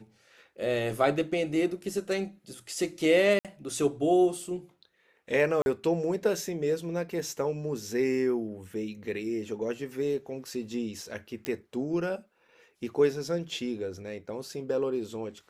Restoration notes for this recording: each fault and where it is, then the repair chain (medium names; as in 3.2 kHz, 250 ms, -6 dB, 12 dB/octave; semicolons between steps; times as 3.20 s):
3.39–3.45 s: dropout 57 ms
5.62–5.66 s: dropout 41 ms
11.45 s: pop -17 dBFS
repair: de-click; interpolate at 3.39 s, 57 ms; interpolate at 5.62 s, 41 ms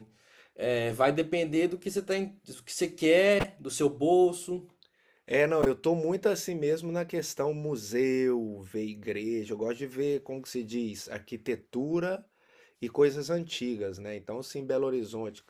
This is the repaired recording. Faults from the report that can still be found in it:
nothing left